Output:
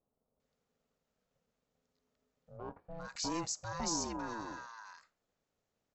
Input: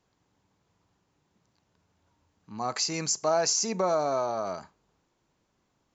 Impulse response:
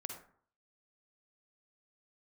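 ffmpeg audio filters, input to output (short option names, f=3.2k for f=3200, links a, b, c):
-filter_complex "[0:a]aeval=exprs='val(0)*sin(2*PI*340*n/s)':c=same,acrossover=split=1100[a][b];[b]adelay=400[c];[a][c]amix=inputs=2:normalize=0,asettb=1/sr,asplit=3[d][e][f];[d]atrim=end=2.574[g];[e]atrim=start=2.57:end=3.05,asetpts=PTS-STARTPTS,afade=t=in:d=0.004:c=qsin,afade=t=out:st=0.476:d=0.004:c=qsin,adynamicsmooth=sensitivity=7.5:basefreq=2.5k[h];[f]atrim=start=3.046[i];[g][h]acrossfade=d=0.004:c1=hsin:c2=qsin[j];[j][i]acrossfade=d=0.004:c1=qsin:c2=hsin,volume=-8dB"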